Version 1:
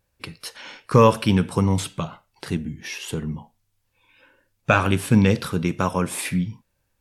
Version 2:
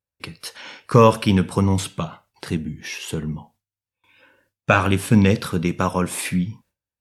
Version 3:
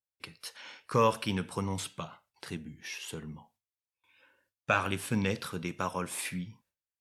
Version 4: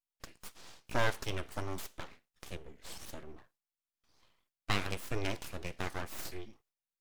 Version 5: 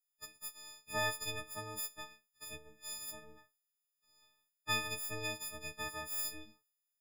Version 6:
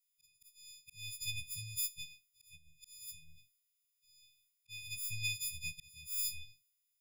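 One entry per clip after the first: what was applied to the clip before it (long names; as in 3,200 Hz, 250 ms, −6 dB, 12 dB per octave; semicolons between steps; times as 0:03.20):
high-pass filter 50 Hz 12 dB per octave; noise gate with hold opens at −53 dBFS; level +1.5 dB
low-shelf EQ 460 Hz −8 dB; level −9 dB
full-wave rectification; level −3 dB
every partial snapped to a pitch grid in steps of 6 semitones; level −8.5 dB
volume swells 545 ms; linear-phase brick-wall band-stop 170–1,900 Hz; level +4.5 dB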